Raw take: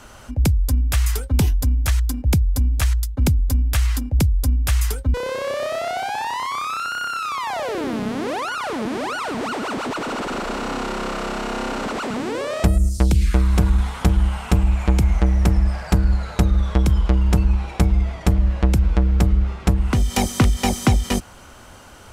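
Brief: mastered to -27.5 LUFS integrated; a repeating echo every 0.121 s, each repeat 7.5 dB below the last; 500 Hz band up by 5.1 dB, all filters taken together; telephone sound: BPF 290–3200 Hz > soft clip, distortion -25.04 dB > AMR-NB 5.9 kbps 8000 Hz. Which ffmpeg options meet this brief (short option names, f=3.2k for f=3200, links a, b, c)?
-af "highpass=290,lowpass=3.2k,equalizer=f=500:t=o:g=7,aecho=1:1:121|242|363|484|605:0.422|0.177|0.0744|0.0312|0.0131,asoftclip=threshold=-8.5dB,volume=0.5dB" -ar 8000 -c:a libopencore_amrnb -b:a 5900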